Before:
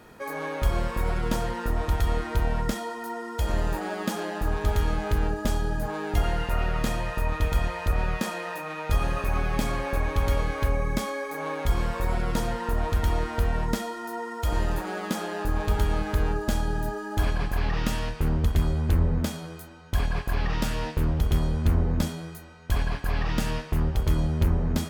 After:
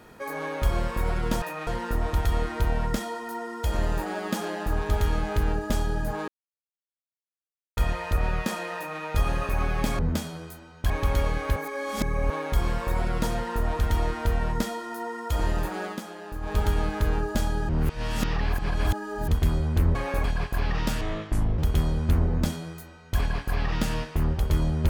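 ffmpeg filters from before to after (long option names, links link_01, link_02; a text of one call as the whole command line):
ffmpeg -i in.wav -filter_complex "[0:a]asplit=17[link_01][link_02][link_03][link_04][link_05][link_06][link_07][link_08][link_09][link_10][link_11][link_12][link_13][link_14][link_15][link_16][link_17];[link_01]atrim=end=1.422[link_18];[link_02]atrim=start=8.508:end=8.762[link_19];[link_03]atrim=start=1.418:end=6.03,asetpts=PTS-STARTPTS,afade=type=out:start_time=4.608:duration=0.004:curve=hsin[link_20];[link_04]atrim=start=6.03:end=7.52,asetpts=PTS-STARTPTS,volume=0[link_21];[link_05]atrim=start=7.52:end=9.742,asetpts=PTS-STARTPTS,afade=type=in:duration=0.004:curve=hsin[link_22];[link_06]atrim=start=19.078:end=19.992[link_23];[link_07]atrim=start=10.028:end=10.692[link_24];[link_08]atrim=start=10.688:end=11.432,asetpts=PTS-STARTPTS,areverse[link_25];[link_09]atrim=start=11.428:end=15.14,asetpts=PTS-STARTPTS,afade=type=out:start_time=3.562:duration=0.15:silence=0.375837[link_26];[link_10]atrim=start=15.14:end=15.54,asetpts=PTS-STARTPTS,volume=-8.5dB[link_27];[link_11]atrim=start=15.54:end=16.822,asetpts=PTS-STARTPTS,afade=type=in:duration=0.15:silence=0.375837[link_28];[link_12]atrim=start=16.818:end=18.412,asetpts=PTS-STARTPTS,areverse[link_29];[link_13]atrim=start=18.408:end=19.082[link_30];[link_14]atrim=start=9.738:end=10.032[link_31];[link_15]atrim=start=19.988:end=20.764[link_32];[link_16]atrim=start=20.76:end=21.15,asetpts=PTS-STARTPTS,asetrate=29988,aresample=44100[link_33];[link_17]atrim=start=21.146[link_34];[link_18][link_19]acrossfade=duration=0.004:curve1=hsin:curve2=hsin[link_35];[link_20][link_21][link_22]concat=n=3:v=0:a=1[link_36];[link_35][link_36]acrossfade=duration=0.004:curve1=hsin:curve2=hsin[link_37];[link_37][link_23]acrossfade=duration=0.004:curve1=hsin:curve2=hsin[link_38];[link_38][link_24]acrossfade=duration=0.004:curve1=hsin:curve2=hsin[link_39];[link_39][link_25]acrossfade=duration=0.004:curve1=hsin:curve2=hsin[link_40];[link_26][link_27][link_28]concat=n=3:v=0:a=1[link_41];[link_40][link_41]acrossfade=duration=0.004:curve1=hsin:curve2=hsin[link_42];[link_42][link_29]acrossfade=duration=0.004:curve1=hsin:curve2=hsin[link_43];[link_43][link_30]acrossfade=duration=0.004:curve1=hsin:curve2=hsin[link_44];[link_44][link_31]acrossfade=duration=0.004:curve1=hsin:curve2=hsin[link_45];[link_45][link_32]acrossfade=duration=0.004:curve1=hsin:curve2=hsin[link_46];[link_46][link_33]acrossfade=duration=0.004:curve1=hsin:curve2=hsin[link_47];[link_47][link_34]acrossfade=duration=0.004:curve1=hsin:curve2=hsin" out.wav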